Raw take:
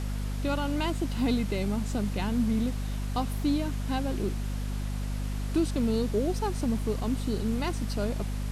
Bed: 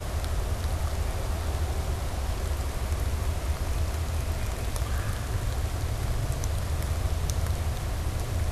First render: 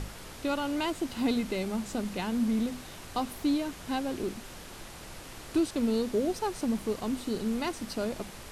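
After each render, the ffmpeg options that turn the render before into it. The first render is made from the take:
-af "bandreject=f=50:t=h:w=6,bandreject=f=100:t=h:w=6,bandreject=f=150:t=h:w=6,bandreject=f=200:t=h:w=6,bandreject=f=250:t=h:w=6"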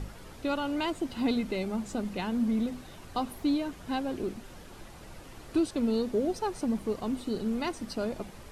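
-af "afftdn=nr=8:nf=-46"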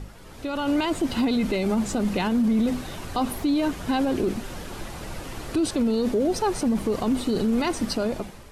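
-af "alimiter=level_in=4dB:limit=-24dB:level=0:latency=1:release=24,volume=-4dB,dynaudnorm=f=110:g=9:m=12dB"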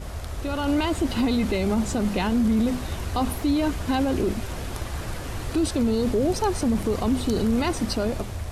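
-filter_complex "[1:a]volume=-4dB[a];[0:a][a]amix=inputs=2:normalize=0"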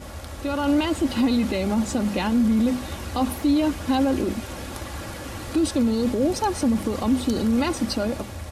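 -af "highpass=79,aecho=1:1:3.6:0.42"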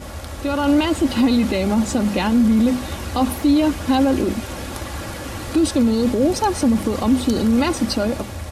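-af "volume=4.5dB"

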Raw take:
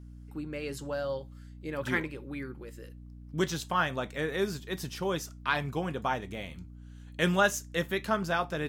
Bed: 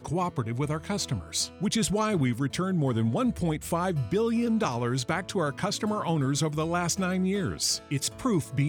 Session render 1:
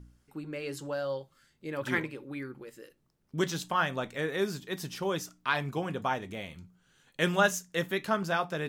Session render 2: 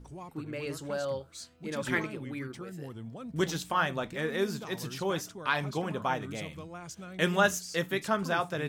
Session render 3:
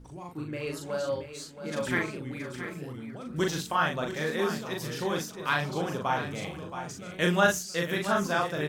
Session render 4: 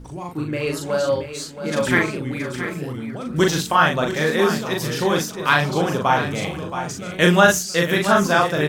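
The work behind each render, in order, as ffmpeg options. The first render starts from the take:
-af "bandreject=f=60:t=h:w=4,bandreject=f=120:t=h:w=4,bandreject=f=180:t=h:w=4,bandreject=f=240:t=h:w=4,bandreject=f=300:t=h:w=4"
-filter_complex "[1:a]volume=-16.5dB[a];[0:a][a]amix=inputs=2:normalize=0"
-filter_complex "[0:a]asplit=2[a][b];[b]adelay=40,volume=-3dB[c];[a][c]amix=inputs=2:normalize=0,aecho=1:1:674:0.299"
-af "volume=10.5dB,alimiter=limit=-2dB:level=0:latency=1"

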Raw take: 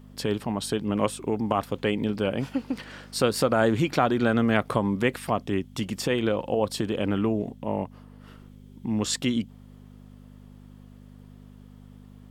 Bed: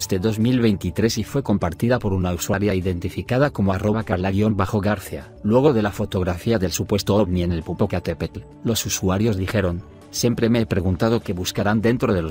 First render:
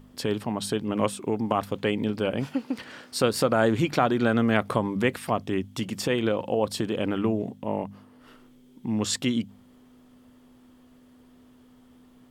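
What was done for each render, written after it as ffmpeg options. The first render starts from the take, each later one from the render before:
-af "bandreject=f=50:t=h:w=4,bandreject=f=100:t=h:w=4,bandreject=f=150:t=h:w=4,bandreject=f=200:t=h:w=4"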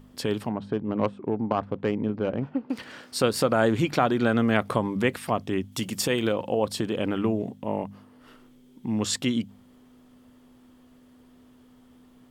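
-filter_complex "[0:a]asettb=1/sr,asplit=3[a][b][c];[a]atrim=end=0.494[d];[b]atrim=start=0.49:end=2.7,asetpts=PTS-STARTPTS,afade=t=in:d=0.004:c=qsin,afade=t=out:st=2.206:d=0.004:c=qsin,adynamicsmooth=sensitivity=0.5:basefreq=1.2k[e];[c]atrim=start=2.696[f];[d][e]acrossfade=d=0.004:c1=hsin:c2=qsin[g];[g][f]acrossfade=d=0.004:c1=qsin:c2=hsin,asettb=1/sr,asplit=3[h][i][j];[h]atrim=end=5.724[k];[i]atrim=start=5.72:end=6.33,asetpts=PTS-STARTPTS,afade=t=in:d=0.004:c=qsin,afade=t=out:st=0.606:d=0.004:c=qsin,aemphasis=mode=production:type=cd[l];[j]atrim=start=6.326[m];[k][l]acrossfade=d=0.004:c1=hsin:c2=qsin[n];[n][m]acrossfade=d=0.004:c1=qsin:c2=hsin"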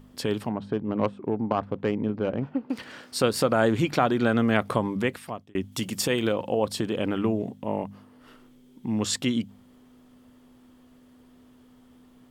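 -filter_complex "[0:a]asplit=2[a][b];[a]atrim=end=5.55,asetpts=PTS-STARTPTS,afade=t=out:st=4.91:d=0.64[c];[b]atrim=start=5.55,asetpts=PTS-STARTPTS,afade=t=in:d=0.004:c=hsin[d];[c][d]concat=n=2:v=0:a=1"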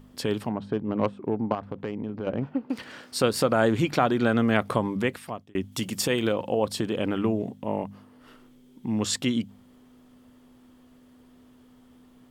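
-filter_complex "[0:a]asettb=1/sr,asplit=3[a][b][c];[a]atrim=end=1.544[d];[b]atrim=start=1.54:end=2.27,asetpts=PTS-STARTPTS,afade=t=in:d=0.004:c=qsin,afade=t=out:st=0.726:d=0.004:c=qsin,acompressor=threshold=-29dB:ratio=3:attack=3.2:release=140:knee=1:detection=peak[e];[c]atrim=start=2.266[f];[d][e]acrossfade=d=0.004:c1=hsin:c2=qsin[g];[g][f]acrossfade=d=0.004:c1=qsin:c2=hsin"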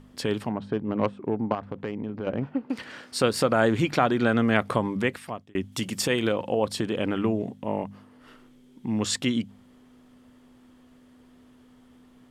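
-af "lowpass=12k,equalizer=f=1.9k:w=1.5:g=2.5"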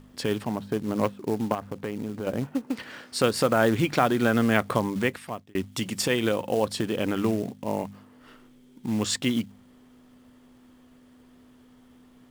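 -af "acrusher=bits=5:mode=log:mix=0:aa=0.000001"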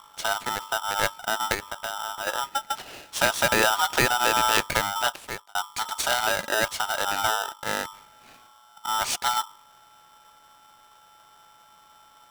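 -af "aeval=exprs='val(0)*sgn(sin(2*PI*1100*n/s))':c=same"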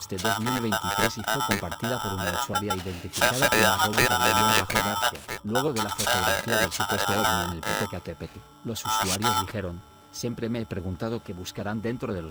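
-filter_complex "[1:a]volume=-11.5dB[a];[0:a][a]amix=inputs=2:normalize=0"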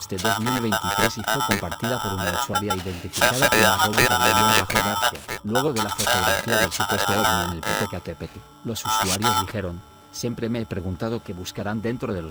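-af "volume=3.5dB"

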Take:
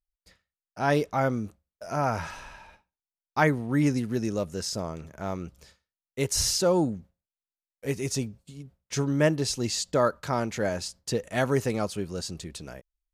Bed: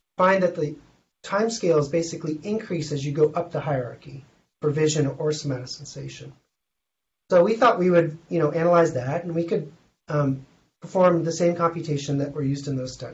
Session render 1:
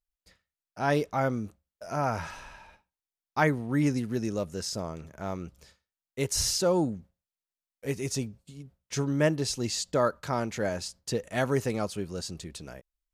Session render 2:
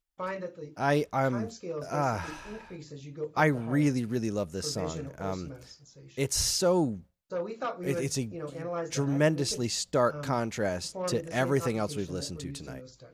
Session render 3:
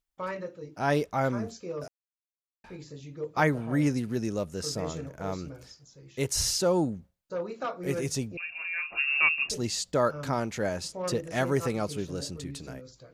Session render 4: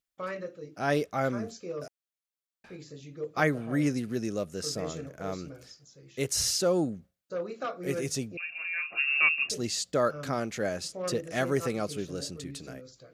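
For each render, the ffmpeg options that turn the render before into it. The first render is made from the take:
-af "volume=-2dB"
-filter_complex "[1:a]volume=-16.5dB[a];[0:a][a]amix=inputs=2:normalize=0"
-filter_complex "[0:a]asettb=1/sr,asplit=3[a][b][c];[a]atrim=end=8.374[d];[b]atrim=start=8.37:end=9.5,asetpts=PTS-STARTPTS,afade=t=in:d=0.004:c=qsin,afade=t=out:st=1.126:d=0.004:c=qsin,lowpass=f=2.5k:t=q:w=0.5098,lowpass=f=2.5k:t=q:w=0.6013,lowpass=f=2.5k:t=q:w=0.9,lowpass=f=2.5k:t=q:w=2.563,afreqshift=-2900[e];[c]atrim=start=9.496[f];[d][e]acrossfade=d=0.004:c1=hsin:c2=qsin[g];[g][f]acrossfade=d=0.004:c1=qsin:c2=hsin,asplit=3[h][i][j];[h]atrim=end=1.88,asetpts=PTS-STARTPTS,afade=t=out:st=1.876:d=0.004:c=hsin[k];[i]atrim=start=1.88:end=2.64,asetpts=PTS-STARTPTS,volume=0[l];[j]atrim=start=2.64,asetpts=PTS-STARTPTS,afade=t=in:d=0.004:c=hsin[m];[k][l][m]concat=n=3:v=0:a=1"
-af "highpass=f=150:p=1,equalizer=f=920:w=6.7:g=-12"

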